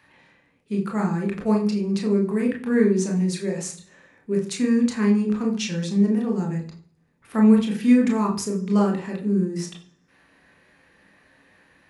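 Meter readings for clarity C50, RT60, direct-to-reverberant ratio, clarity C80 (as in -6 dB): 9.5 dB, 0.45 s, 0.0 dB, 13.5 dB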